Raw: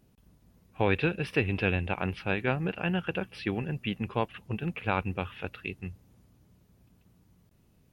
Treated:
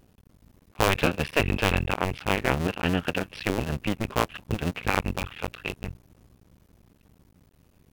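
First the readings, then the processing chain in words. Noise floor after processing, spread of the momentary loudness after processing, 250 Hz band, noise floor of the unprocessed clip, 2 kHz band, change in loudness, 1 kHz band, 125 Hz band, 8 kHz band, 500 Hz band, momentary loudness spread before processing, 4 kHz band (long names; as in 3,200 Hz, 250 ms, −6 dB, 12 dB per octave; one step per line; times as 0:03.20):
−61 dBFS, 10 LU, +2.5 dB, −65 dBFS, +4.0 dB, +4.0 dB, +5.5 dB, +2.5 dB, can't be measured, +3.0 dB, 10 LU, +8.5 dB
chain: sub-harmonics by changed cycles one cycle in 2, muted
pitch vibrato 0.49 Hz 14 cents
level +7 dB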